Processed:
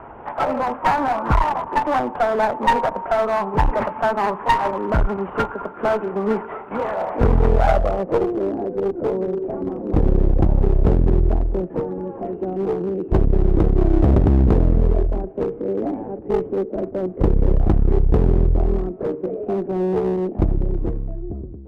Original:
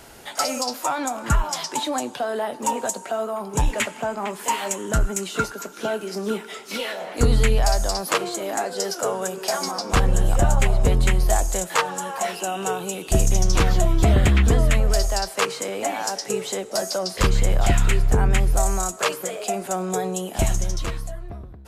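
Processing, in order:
variable-slope delta modulation 16 kbit/s
low-pass filter sweep 1,000 Hz → 350 Hz, 0:07.28–0:08.52
asymmetric clip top −24.5 dBFS, bottom −11 dBFS
level +5.5 dB

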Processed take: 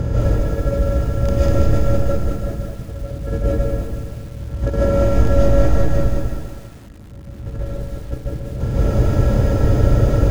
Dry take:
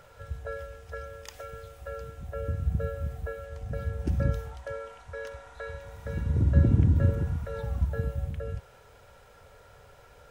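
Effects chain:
compressor on every frequency bin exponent 0.4
tilt shelving filter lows +7 dB, about 750 Hz
compressor whose output falls as the input rises −24 dBFS, ratio −0.5
on a send: feedback echo with a high-pass in the loop 329 ms, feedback 43%, high-pass 540 Hz, level −8 dB
on the sum: comb and all-pass reverb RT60 0.45 s, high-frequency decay 0.55×, pre-delay 110 ms, DRR −6 dB
feedback echo at a low word length 197 ms, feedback 35%, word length 7 bits, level −4.5 dB

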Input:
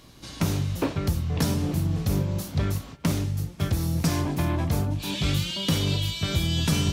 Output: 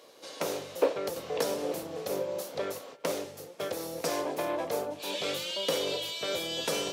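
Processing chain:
high-pass with resonance 500 Hz, resonance Q 4.8
0:01.16–0:01.83: multiband upward and downward compressor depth 40%
level −4 dB

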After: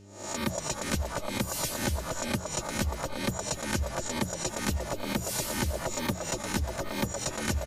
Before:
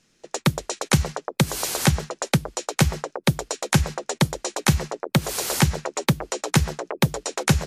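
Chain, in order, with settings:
peak hold with a rise ahead of every peak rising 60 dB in 0.46 s
reverb reduction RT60 0.79 s
mains-hum notches 60/120/180 Hz
comb filter 3.3 ms, depth 77%
reversed playback
downward compressor, threshold −22 dBFS, peak gain reduction 11 dB
reversed playback
hum with harmonics 100 Hz, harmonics 4, −47 dBFS
on a send: echo with shifted repeats 237 ms, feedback 37%, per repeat −76 Hz, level −8.5 dB
on the sum: level −5 dB

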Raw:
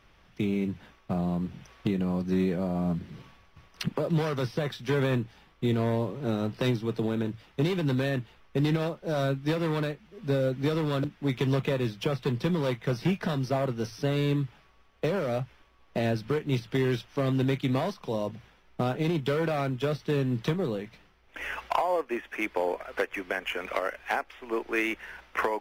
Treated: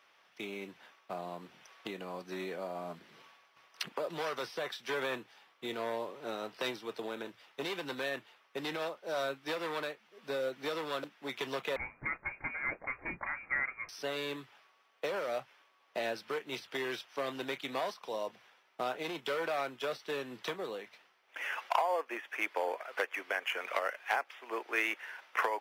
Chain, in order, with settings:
high-pass filter 600 Hz 12 dB per octave
0:11.76–0:13.89: voice inversion scrambler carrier 2,600 Hz
level −2 dB

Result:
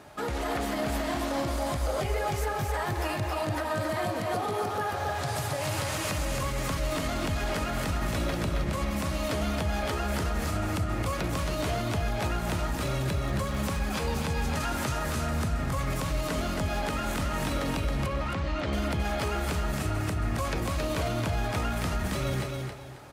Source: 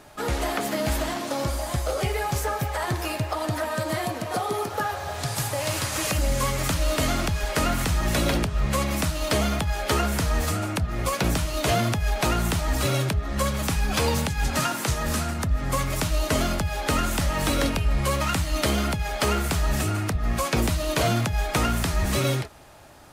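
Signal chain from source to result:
high-pass filter 47 Hz
high-shelf EQ 3,800 Hz −6 dB
brickwall limiter −23 dBFS, peak gain reduction 10.5 dB
0:13.25–0:13.81: surface crackle 58 per second −35 dBFS
0:18.06–0:18.73: high-frequency loss of the air 160 metres
repeating echo 271 ms, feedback 28%, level −4 dB

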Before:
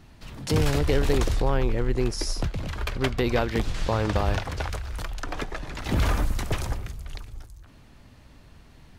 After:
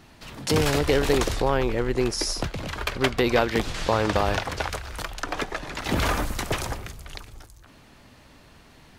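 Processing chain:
low-shelf EQ 160 Hz −11.5 dB
level +5 dB

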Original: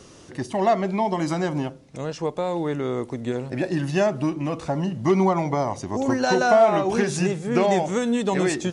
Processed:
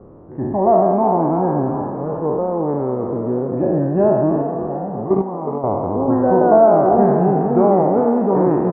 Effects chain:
peak hold with a decay on every bin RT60 2.04 s
inverse Chebyshev low-pass filter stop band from 5,500 Hz, stop band 80 dB
0:04.42–0:05.64: output level in coarse steps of 15 dB
on a send: echo with shifted repeats 363 ms, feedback 53%, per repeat +52 Hz, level −10 dB
on the sum: level +3.5 dB

